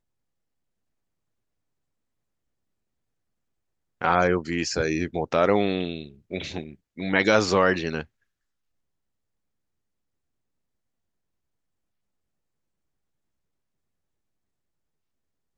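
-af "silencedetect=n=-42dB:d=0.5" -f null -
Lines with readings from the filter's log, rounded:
silence_start: 0.00
silence_end: 4.01 | silence_duration: 4.01
silence_start: 8.04
silence_end: 15.57 | silence_duration: 7.54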